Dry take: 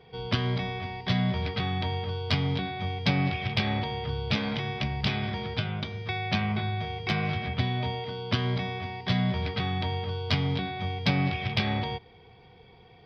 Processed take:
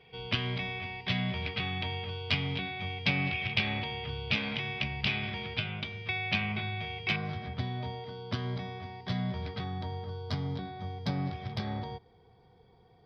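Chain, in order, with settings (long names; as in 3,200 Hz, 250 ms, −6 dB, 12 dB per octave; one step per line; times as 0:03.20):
parametric band 2,600 Hz +11.5 dB 0.72 octaves, from 0:07.16 −6 dB, from 0:09.64 −14 dB
level −6.5 dB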